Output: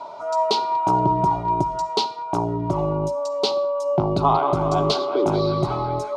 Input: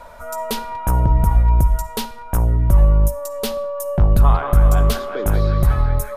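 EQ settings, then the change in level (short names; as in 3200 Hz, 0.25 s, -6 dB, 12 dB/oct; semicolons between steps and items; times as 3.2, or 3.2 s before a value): fixed phaser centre 350 Hz, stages 8; dynamic EQ 4100 Hz, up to +4 dB, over -48 dBFS, Q 2.8; speaker cabinet 190–5600 Hz, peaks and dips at 270 Hz +8 dB, 380 Hz +6 dB, 580 Hz +8 dB, 890 Hz +4 dB, 1900 Hz +4 dB, 4400 Hz +4 dB; +3.5 dB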